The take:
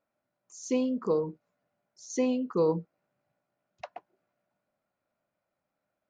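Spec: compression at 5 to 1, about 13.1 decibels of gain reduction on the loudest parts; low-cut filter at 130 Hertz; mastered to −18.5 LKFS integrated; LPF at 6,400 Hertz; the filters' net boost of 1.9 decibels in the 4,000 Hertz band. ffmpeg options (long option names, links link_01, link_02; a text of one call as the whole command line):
ffmpeg -i in.wav -af "highpass=130,lowpass=6400,equalizer=frequency=4000:width_type=o:gain=3.5,acompressor=threshold=-37dB:ratio=5,volume=23.5dB" out.wav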